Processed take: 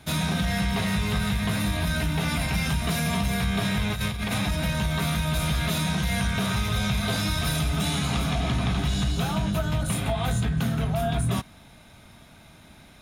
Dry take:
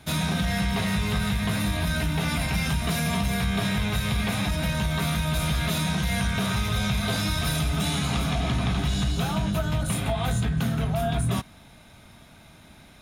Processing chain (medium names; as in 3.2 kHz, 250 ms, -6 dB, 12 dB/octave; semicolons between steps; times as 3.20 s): 3.90–4.38 s: compressor with a negative ratio -27 dBFS, ratio -0.5